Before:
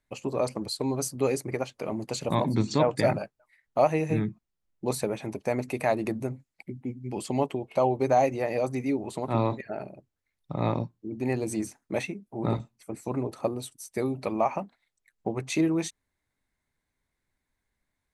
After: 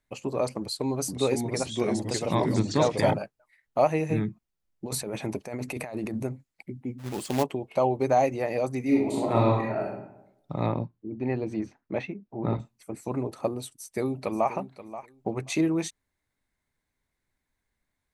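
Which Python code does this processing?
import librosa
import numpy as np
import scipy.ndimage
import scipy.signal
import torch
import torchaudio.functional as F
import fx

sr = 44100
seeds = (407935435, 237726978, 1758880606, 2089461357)

y = fx.echo_pitch(x, sr, ms=489, semitones=-2, count=2, db_per_echo=-3.0, at=(0.59, 3.14))
y = fx.over_compress(y, sr, threshold_db=-33.0, ratio=-1.0, at=(4.86, 6.23))
y = fx.quant_companded(y, sr, bits=4, at=(6.98, 7.42), fade=0.02)
y = fx.reverb_throw(y, sr, start_s=8.82, length_s=1.06, rt60_s=0.84, drr_db=-3.0)
y = fx.air_absorb(y, sr, metres=250.0, at=(10.66, 12.59))
y = fx.echo_throw(y, sr, start_s=13.74, length_s=0.78, ms=530, feedback_pct=15, wet_db=-14.0)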